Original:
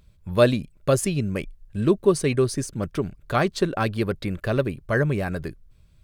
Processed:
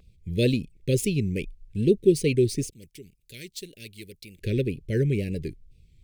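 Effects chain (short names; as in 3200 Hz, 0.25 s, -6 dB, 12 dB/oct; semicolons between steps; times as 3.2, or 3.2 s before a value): median filter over 3 samples; elliptic band-stop 460–2200 Hz, stop band 50 dB; wow and flutter 87 cents; 2.7–4.39 pre-emphasis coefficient 0.9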